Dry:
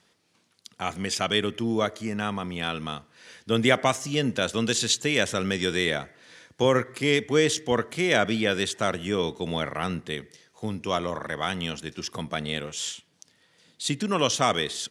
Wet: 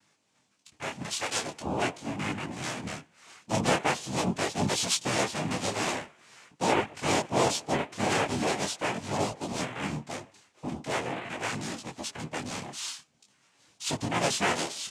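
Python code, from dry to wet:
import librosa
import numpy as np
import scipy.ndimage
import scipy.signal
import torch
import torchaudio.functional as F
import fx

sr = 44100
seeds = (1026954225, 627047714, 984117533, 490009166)

y = fx.low_shelf(x, sr, hz=350.0, db=-11.5, at=(1.02, 1.65))
y = fx.noise_vocoder(y, sr, seeds[0], bands=4)
y = fx.detune_double(y, sr, cents=15)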